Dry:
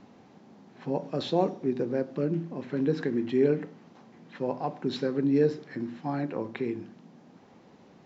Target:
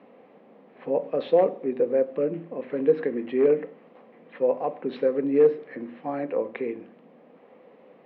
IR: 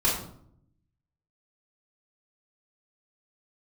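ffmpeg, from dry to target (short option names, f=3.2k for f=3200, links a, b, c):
-af "asoftclip=type=hard:threshold=-16dB,highpass=330,equalizer=f=350:t=q:w=4:g=-5,equalizer=f=500:t=q:w=4:g=9,equalizer=f=880:t=q:w=4:g=-6,equalizer=f=1.5k:t=q:w=4:g=-7,lowpass=f=2.6k:w=0.5412,lowpass=f=2.6k:w=1.3066,volume=4.5dB"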